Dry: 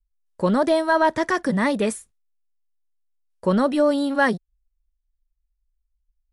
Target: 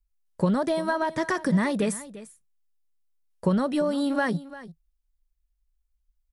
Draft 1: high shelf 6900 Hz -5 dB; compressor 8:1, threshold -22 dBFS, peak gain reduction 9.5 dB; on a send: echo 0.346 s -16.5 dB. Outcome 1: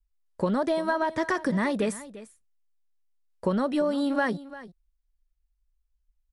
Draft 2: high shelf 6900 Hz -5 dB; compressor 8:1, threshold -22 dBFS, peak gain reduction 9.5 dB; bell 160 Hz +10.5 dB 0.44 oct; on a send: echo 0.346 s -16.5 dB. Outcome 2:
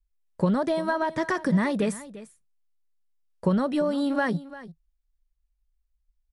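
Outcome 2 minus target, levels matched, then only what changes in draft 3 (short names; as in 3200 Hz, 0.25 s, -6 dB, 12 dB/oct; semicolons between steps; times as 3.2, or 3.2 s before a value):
8000 Hz band -5.0 dB
change: high shelf 6900 Hz +3 dB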